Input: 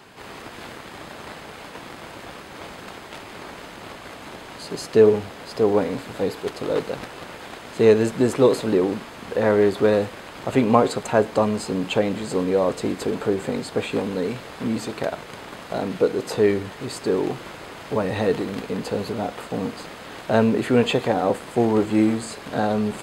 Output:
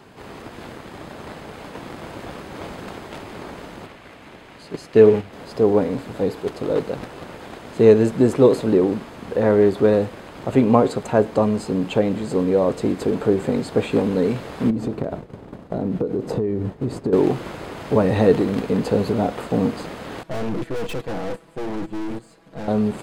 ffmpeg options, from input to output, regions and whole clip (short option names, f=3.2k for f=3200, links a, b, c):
-filter_complex "[0:a]asettb=1/sr,asplit=3[a][b][c];[a]atrim=end=3.864[d];[b]atrim=start=3.86:end=5.33,asetpts=PTS-STARTPTS,afade=t=in:d=0.004:c=qsin,afade=t=out:st=1.466:d=0.004:c=qsin,agate=range=-7dB:threshold=-29dB:ratio=16:release=100:detection=peak,equalizer=f=2.3k:w=0.98:g=6.5[e];[c]atrim=start=5.326[f];[d][e]acrossfade=d=0.004:c1=hsin:c2=qsin[g];[g][f]acrossfade=d=0.004:c1=qsin:c2=hsin,asettb=1/sr,asplit=3[h][i][j];[h]atrim=end=14.704[k];[i]atrim=start=14.7:end=17.13,asetpts=PTS-STARTPTS,afade=t=in:d=0.004:c=qsin,afade=t=out:st=2.426:d=0.004:c=qsin,agate=range=-33dB:threshold=-31dB:ratio=3:release=100:detection=peak,tiltshelf=f=760:g=7.5,acompressor=threshold=-26dB:ratio=8:attack=3.2:release=140:knee=1:detection=peak[l];[j]atrim=start=17.126[m];[k][l]acrossfade=d=0.004:c1=hsin:c2=qsin[n];[n][m]acrossfade=d=0.004:c1=qsin:c2=hsin,asettb=1/sr,asplit=3[o][p][q];[o]atrim=end=20.234[r];[p]atrim=start=20.23:end=22.68,asetpts=PTS-STARTPTS,afade=t=in:d=0.004:c=qsin,afade=t=out:st=2.446:d=0.004:c=qsin,agate=range=-14dB:threshold=-25dB:ratio=16:release=100:detection=peak,aecho=1:1:6.1:0.88,atrim=end_sample=108045,aeval=exprs='(tanh(35.5*val(0)+0.8)-tanh(0.8))/35.5':c=same[s];[q]atrim=start=22.676[t];[r][s]acrossfade=d=0.004:c1=hsin:c2=qsin[u];[u][t]acrossfade=d=0.004:c1=qsin:c2=hsin,tiltshelf=f=790:g=4.5,dynaudnorm=f=370:g=11:m=5dB"